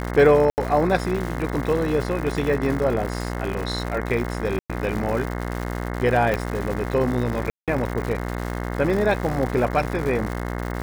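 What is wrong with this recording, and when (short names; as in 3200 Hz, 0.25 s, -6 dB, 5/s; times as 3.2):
buzz 60 Hz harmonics 36 -28 dBFS
crackle 220/s -28 dBFS
0.5–0.58 gap 79 ms
4.59–4.7 gap 0.106 s
6.34 pop -10 dBFS
7.5–7.68 gap 0.177 s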